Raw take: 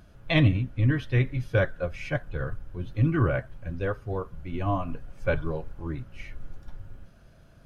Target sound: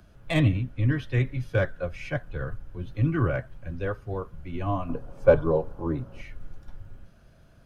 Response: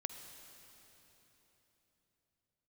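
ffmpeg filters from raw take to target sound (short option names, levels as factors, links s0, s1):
-filter_complex "[0:a]asettb=1/sr,asplit=3[s0][s1][s2];[s0]atrim=end=4.894[s3];[s1]atrim=start=4.89:end=6.21,asetpts=PTS-STARTPTS,afade=t=in:d=0.004:c=qsin,afade=t=out:st=1.316:d=0.004:c=qsin,equalizer=f=125:t=o:w=1:g=3,equalizer=f=250:t=o:w=1:g=5,equalizer=f=500:t=o:w=1:g=10,equalizer=f=1000:t=o:w=1:g=8,equalizer=f=2000:t=o:w=1:g=-5[s4];[s2]atrim=start=6.206[s5];[s3][s4]acrossfade=d=0.004:c1=hsin:c2=qsin[s6];[s6][s5]acrossfade=d=0.004:c1=qsin:c2=hsin,acrossover=split=140|290|1500[s7][s8][s9][s10];[s10]asoftclip=type=tanh:threshold=0.0531[s11];[s7][s8][s9][s11]amix=inputs=4:normalize=0,volume=0.891"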